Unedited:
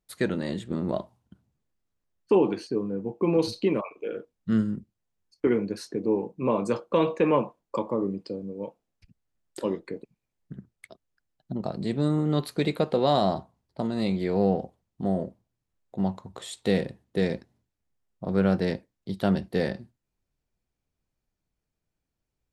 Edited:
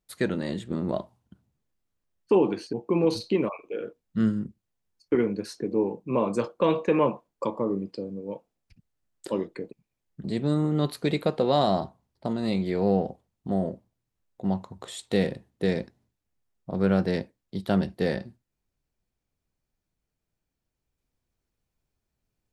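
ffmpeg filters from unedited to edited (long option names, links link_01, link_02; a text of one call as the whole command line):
ffmpeg -i in.wav -filter_complex "[0:a]asplit=3[link_01][link_02][link_03];[link_01]atrim=end=2.732[link_04];[link_02]atrim=start=3.048:end=10.562[link_05];[link_03]atrim=start=11.778[link_06];[link_04][link_05]acrossfade=duration=0.004:curve1=hsin:curve2=hsin[link_07];[link_07][link_06]acrossfade=duration=0.004:curve1=hsin:curve2=hsin" out.wav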